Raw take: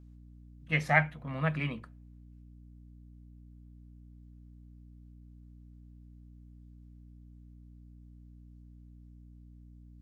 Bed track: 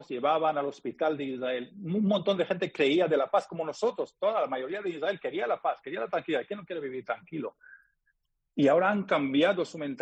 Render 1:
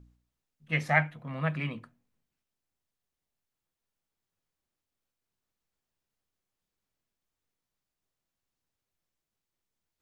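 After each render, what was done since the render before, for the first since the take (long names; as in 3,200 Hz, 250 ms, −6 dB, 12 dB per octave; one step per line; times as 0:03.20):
hum removal 60 Hz, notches 5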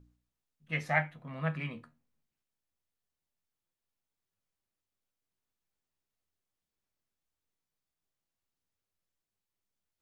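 flanger 0.21 Hz, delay 9.9 ms, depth 3.8 ms, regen +63%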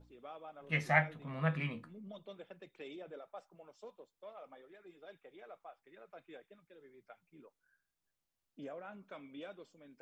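mix in bed track −24 dB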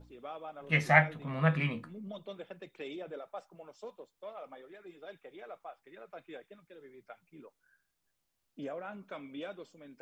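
level +6 dB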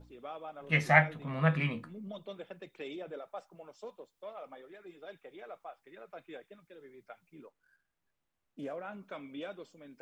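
0:07.44–0:08.76: running median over 9 samples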